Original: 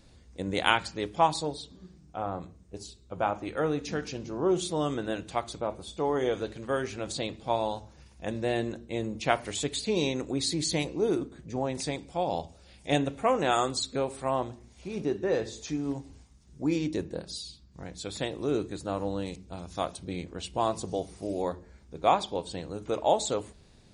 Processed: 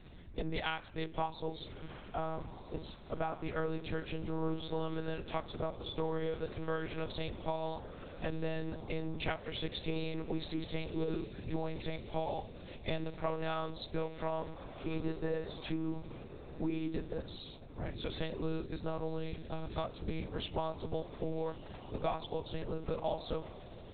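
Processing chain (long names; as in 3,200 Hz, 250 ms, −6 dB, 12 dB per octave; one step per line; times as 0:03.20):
downward compressor 6 to 1, threshold −36 dBFS, peak gain reduction 17.5 dB
feedback delay with all-pass diffusion 1,301 ms, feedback 49%, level −14.5 dB
one-pitch LPC vocoder at 8 kHz 160 Hz
level +3 dB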